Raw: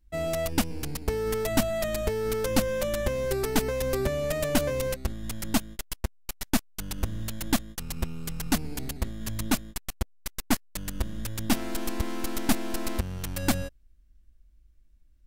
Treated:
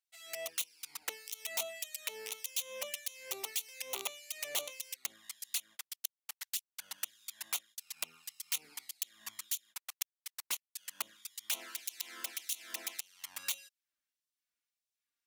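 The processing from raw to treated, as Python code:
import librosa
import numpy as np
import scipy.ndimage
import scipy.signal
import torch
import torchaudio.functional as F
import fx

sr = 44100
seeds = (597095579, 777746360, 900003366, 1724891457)

y = (np.mod(10.0 ** (19.0 / 20.0) * x + 1.0, 2.0) - 1.0) / 10.0 ** (19.0 / 20.0)
y = fx.env_flanger(y, sr, rest_ms=4.6, full_db=-24.0)
y = fx.filter_lfo_highpass(y, sr, shape='sine', hz=1.7, low_hz=960.0, high_hz=3900.0, q=0.78)
y = F.gain(torch.from_numpy(y), -3.0).numpy()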